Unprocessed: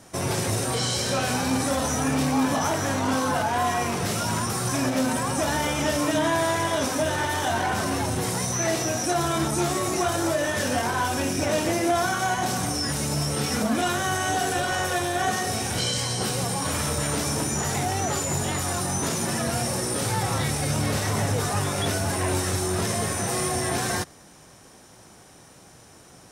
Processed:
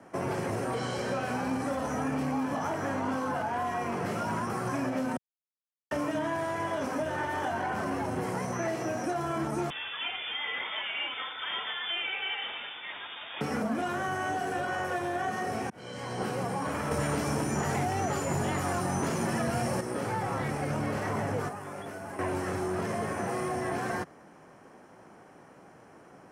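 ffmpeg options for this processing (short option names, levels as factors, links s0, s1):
-filter_complex "[0:a]asettb=1/sr,asplit=3[s0][s1][s2];[s0]atrim=end=9.704[s3];[s1]atrim=start=9.7:end=13.41,asetpts=PTS-STARTPTS,afade=t=in:d=0.004:c=qsin,afade=t=out:st=3.706:d=0.004:c=qsin,lowpass=f=3200:t=q:w=0.5098,lowpass=f=3200:t=q:w=0.6013,lowpass=f=3200:t=q:w=0.9,lowpass=f=3200:t=q:w=2.563,afreqshift=-3800[s4];[s2]atrim=start=13.406[s5];[s3][s4]acrossfade=d=0.004:c1=hsin:c2=qsin[s6];[s6][s5]acrossfade=d=0.004:c1=qsin:c2=hsin,asettb=1/sr,asplit=3[s7][s8][s9];[s7]atrim=end=16.914[s10];[s8]atrim=start=16.91:end=19.81,asetpts=PTS-STARTPTS,afade=t=in:d=0.004:c=qsin,afade=t=out:st=2.896:d=0.004:c=qsin,acontrast=67[s11];[s9]atrim=start=19.806[s12];[s10][s11]acrossfade=d=0.004:c1=hsin:c2=qsin[s13];[s13][s12]acrossfade=d=0.004:c1=qsin:c2=hsin,asettb=1/sr,asplit=3[s14][s15][s16];[s14]atrim=end=21.484[s17];[s15]atrim=start=21.48:end=22.19,asetpts=PTS-STARTPTS,afade=t=in:d=0.004:c=qsin,afade=t=out:st=0.706:d=0.004:c=qsin,acrossover=split=580|6900[s18][s19][s20];[s18]acompressor=threshold=0.01:ratio=4[s21];[s19]acompressor=threshold=0.00891:ratio=4[s22];[s20]acompressor=threshold=0.0126:ratio=4[s23];[s21][s22][s23]amix=inputs=3:normalize=0[s24];[s16]atrim=start=22.186[s25];[s17][s24]acrossfade=d=0.004:c1=hsin:c2=qsin[s26];[s26][s25]acrossfade=d=0.004:c1=qsin:c2=hsin,asplit=4[s27][s28][s29][s30];[s27]atrim=end=5.17,asetpts=PTS-STARTPTS,afade=t=out:st=5.166:d=0.004:c=hsin[s31];[s28]atrim=start=5.17:end=5.91,asetpts=PTS-STARTPTS,volume=0[s32];[s29]atrim=start=5.91:end=15.7,asetpts=PTS-STARTPTS,afade=t=in:d=0.004:c=hsin,afade=t=out:st=9.786:d=0.004:c=hsin[s33];[s30]atrim=start=15.7,asetpts=PTS-STARTPTS,afade=t=in:d=0.54[s34];[s31][s32][s33][s34]concat=n=4:v=0:a=1,acrossover=split=160 2200:gain=0.2 1 0.112[s35][s36][s37];[s35][s36][s37]amix=inputs=3:normalize=0,bandreject=f=3700:w=8.2,acrossover=split=140|3000[s38][s39][s40];[s39]acompressor=threshold=0.0355:ratio=6[s41];[s38][s41][s40]amix=inputs=3:normalize=0"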